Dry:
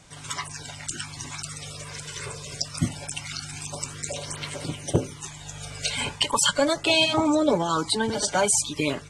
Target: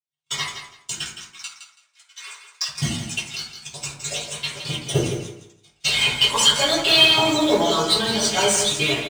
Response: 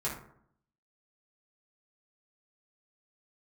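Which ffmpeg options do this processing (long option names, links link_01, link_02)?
-filter_complex "[0:a]agate=range=-59dB:threshold=-32dB:ratio=16:detection=peak,highshelf=frequency=2100:width_type=q:width=1.5:gain=12.5,acrusher=bits=3:mode=log:mix=0:aa=0.000001,asplit=2[link_01][link_02];[link_02]highpass=frequency=720:poles=1,volume=7dB,asoftclip=type=tanh:threshold=-13.5dB[link_03];[link_01][link_03]amix=inputs=2:normalize=0,lowpass=frequency=2900:poles=1,volume=-6dB,asettb=1/sr,asplit=3[link_04][link_05][link_06];[link_04]atrim=end=1.074[link_07];[link_05]atrim=start=1.07:end=2.68,asetpts=PTS-STARTPTS,afade=type=in:duration=0.004:curve=qsin,afade=type=out:start_time=1.606:duration=0.004:curve=qsin,highpass=frequency=1200:width_type=q:width=1.7[link_08];[link_06]atrim=start=2.676[link_09];[link_07][link_08]acrossfade=duration=0.004:curve1=hsin:curve2=qsin[link_10];[link_10][link_09]acrossfade=duration=0.004:curve1=qsin:curve2=hsin,aecho=1:1:165|330|495:0.355|0.071|0.0142[link_11];[1:a]atrim=start_sample=2205[link_12];[link_11][link_12]afir=irnorm=-1:irlink=0,volume=-1.5dB"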